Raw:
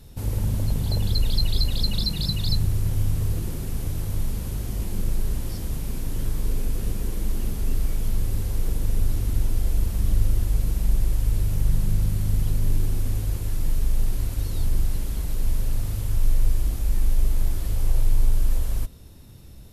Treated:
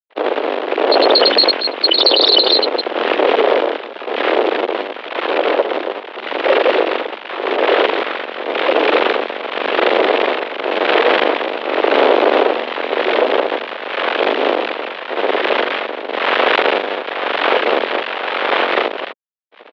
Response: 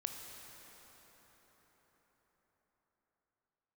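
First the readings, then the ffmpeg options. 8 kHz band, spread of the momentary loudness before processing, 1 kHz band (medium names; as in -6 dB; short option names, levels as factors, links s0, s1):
under -15 dB, 6 LU, +30.0 dB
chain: -af "tremolo=f=0.91:d=0.82,afftdn=nr=19:nf=-32,aecho=1:1:102|259.5:0.631|0.447,acrusher=bits=8:dc=4:mix=0:aa=0.000001,asuperstop=centerf=1500:order=12:qfactor=1.4,aeval=exprs='val(0)+0.00398*(sin(2*PI*60*n/s)+sin(2*PI*2*60*n/s)/2+sin(2*PI*3*60*n/s)/3+sin(2*PI*4*60*n/s)/4+sin(2*PI*5*60*n/s)/5)':c=same,acontrast=25,afftfilt=real='re*gte(hypot(re,im),0.0891)':imag='im*gte(hypot(re,im),0.0891)':win_size=1024:overlap=0.75,aeval=exprs='abs(val(0))':c=same,acrusher=bits=8:mode=log:mix=0:aa=0.000001,highpass=f=390:t=q:w=0.5412,highpass=f=390:t=q:w=1.307,lowpass=f=3400:t=q:w=0.5176,lowpass=f=3400:t=q:w=0.7071,lowpass=f=3400:t=q:w=1.932,afreqshift=110,alimiter=level_in=37.6:limit=0.891:release=50:level=0:latency=1,volume=0.891"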